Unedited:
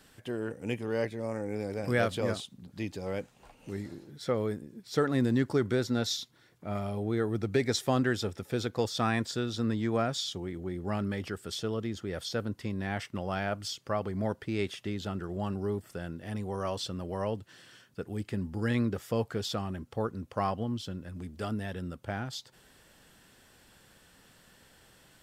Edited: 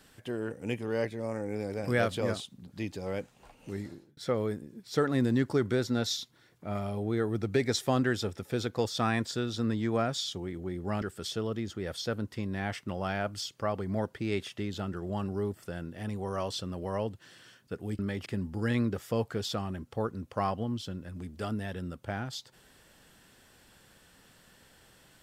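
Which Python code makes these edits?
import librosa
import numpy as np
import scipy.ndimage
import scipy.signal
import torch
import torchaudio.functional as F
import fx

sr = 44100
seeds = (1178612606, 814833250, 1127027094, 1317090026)

y = fx.edit(x, sr, fx.fade_out_span(start_s=3.86, length_s=0.31),
    fx.move(start_s=11.02, length_s=0.27, to_s=18.26), tone=tone)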